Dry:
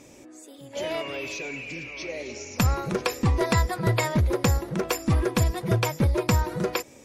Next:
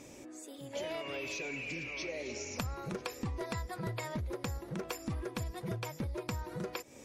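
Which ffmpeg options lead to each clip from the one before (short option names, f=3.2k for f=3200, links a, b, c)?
-af "acompressor=threshold=-34dB:ratio=6,volume=-2dB"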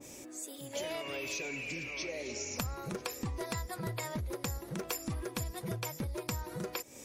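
-af "crystalizer=i=2:c=0,adynamicequalizer=threshold=0.00355:dfrequency=2000:dqfactor=0.7:tfrequency=2000:tqfactor=0.7:attack=5:release=100:ratio=0.375:range=1.5:mode=cutabove:tftype=highshelf"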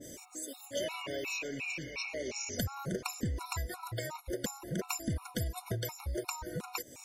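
-af "afftfilt=real='re*gt(sin(2*PI*2.8*pts/sr)*(1-2*mod(floor(b*sr/1024/730),2)),0)':imag='im*gt(sin(2*PI*2.8*pts/sr)*(1-2*mod(floor(b*sr/1024/730),2)),0)':win_size=1024:overlap=0.75,volume=3.5dB"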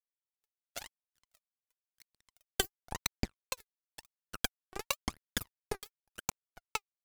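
-af "acrusher=bits=3:mix=0:aa=0.5,aphaser=in_gain=1:out_gain=1:delay=2.7:decay=0.73:speed=0.95:type=triangular,volume=5.5dB"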